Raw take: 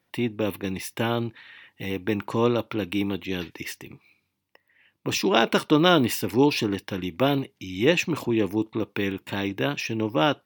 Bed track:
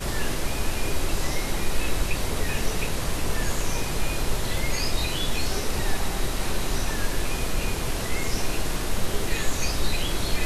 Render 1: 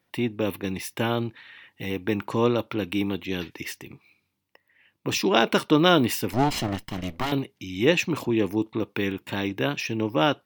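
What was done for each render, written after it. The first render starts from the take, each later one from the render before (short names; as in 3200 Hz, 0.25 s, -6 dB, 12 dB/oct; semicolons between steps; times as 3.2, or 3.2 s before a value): 6.33–7.32 minimum comb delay 0.98 ms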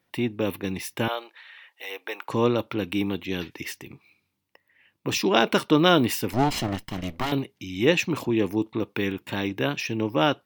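1.08–2.29 HPF 540 Hz 24 dB/oct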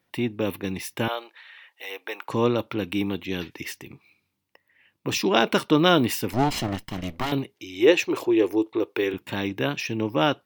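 7.54–9.14 resonant low shelf 280 Hz -9 dB, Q 3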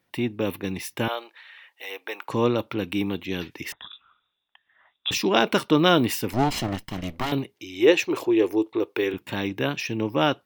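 3.72–5.11 inverted band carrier 3700 Hz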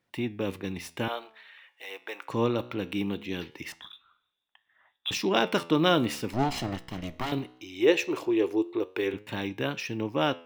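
median filter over 3 samples; flange 0.21 Hz, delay 8.4 ms, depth 9.2 ms, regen +86%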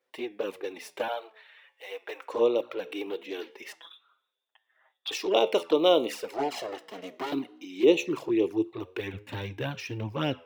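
high-pass sweep 470 Hz -> 89 Hz, 6.89–8.94; envelope flanger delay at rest 7.9 ms, full sweep at -19 dBFS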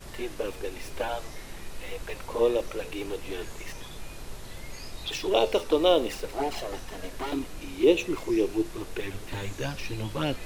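add bed track -15 dB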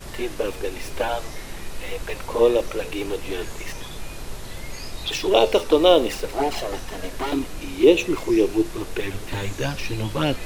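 gain +6.5 dB; limiter -3 dBFS, peak gain reduction 1.5 dB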